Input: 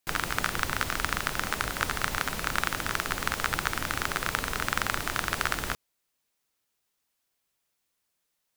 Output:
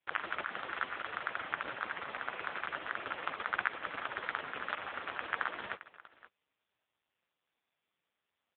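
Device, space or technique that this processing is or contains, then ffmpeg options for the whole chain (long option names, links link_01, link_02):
satellite phone: -af "highpass=360,lowpass=3300,aecho=1:1:529:0.0841" -ar 8000 -c:a libopencore_amrnb -b:a 4750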